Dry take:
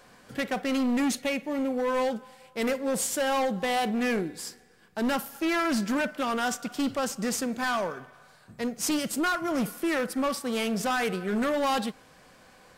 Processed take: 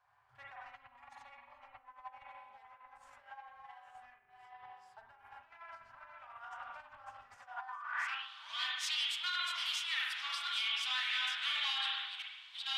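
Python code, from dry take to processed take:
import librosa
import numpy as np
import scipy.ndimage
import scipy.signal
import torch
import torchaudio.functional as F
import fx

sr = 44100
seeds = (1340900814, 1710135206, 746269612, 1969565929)

y = fx.reverse_delay(x, sr, ms=582, wet_db=-3.0)
y = fx.rev_spring(y, sr, rt60_s=1.2, pass_ms=(40, 45), chirp_ms=70, drr_db=-4.0)
y = fx.filter_sweep_bandpass(y, sr, from_hz=410.0, to_hz=3500.0, start_s=7.36, end_s=8.28, q=4.6)
y = fx.dynamic_eq(y, sr, hz=1800.0, q=0.96, threshold_db=-48.0, ratio=4.0, max_db=3)
y = fx.over_compress(y, sr, threshold_db=-38.0, ratio=-1.0)
y = scipy.signal.sosfilt(scipy.signal.ellip(3, 1.0, 40, [110.0, 880.0], 'bandstop', fs=sr, output='sos'), y)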